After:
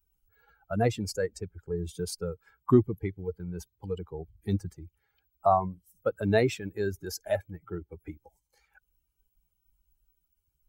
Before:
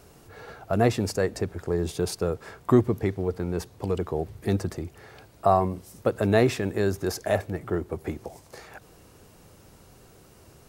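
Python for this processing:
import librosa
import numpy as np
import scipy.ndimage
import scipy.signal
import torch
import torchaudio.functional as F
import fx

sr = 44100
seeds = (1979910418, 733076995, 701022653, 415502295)

y = fx.bin_expand(x, sr, power=2.0)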